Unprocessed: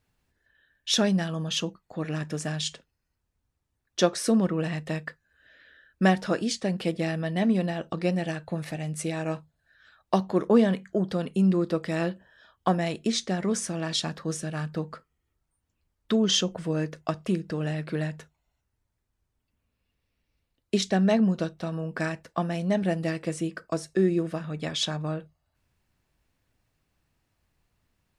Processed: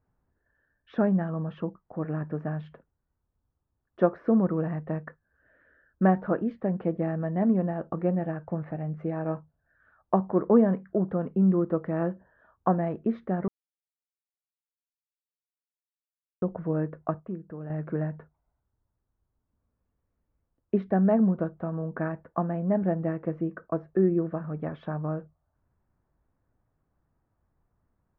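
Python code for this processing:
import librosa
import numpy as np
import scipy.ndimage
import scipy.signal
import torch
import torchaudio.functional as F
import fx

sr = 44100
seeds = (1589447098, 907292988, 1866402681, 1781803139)

y = fx.edit(x, sr, fx.silence(start_s=13.48, length_s=2.94),
    fx.fade_down_up(start_s=17.02, length_s=0.86, db=-9.0, fade_s=0.18, curve='log'), tone=tone)
y = scipy.signal.sosfilt(scipy.signal.butter(4, 1400.0, 'lowpass', fs=sr, output='sos'), y)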